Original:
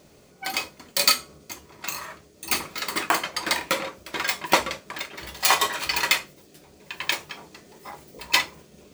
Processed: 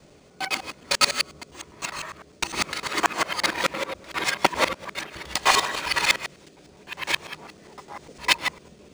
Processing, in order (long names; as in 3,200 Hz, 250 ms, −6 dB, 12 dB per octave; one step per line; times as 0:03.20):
reversed piece by piece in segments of 101 ms
linearly interpolated sample-rate reduction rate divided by 3×
level +1.5 dB